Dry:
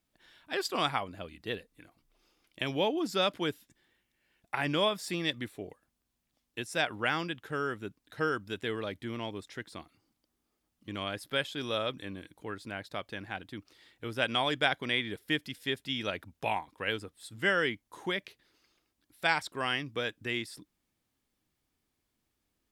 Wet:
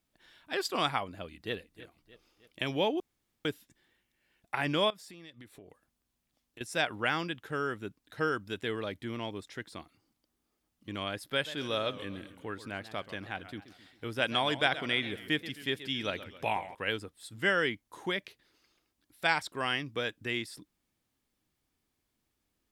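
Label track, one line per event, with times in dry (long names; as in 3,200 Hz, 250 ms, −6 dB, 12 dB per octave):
1.130000	1.540000	delay throw 310 ms, feedback 50%, level −16 dB
3.000000	3.450000	fill with room tone
4.900000	6.610000	downward compressor, threshold −48 dBFS
11.290000	16.750000	feedback echo with a swinging delay time 134 ms, feedback 49%, depth 203 cents, level −14 dB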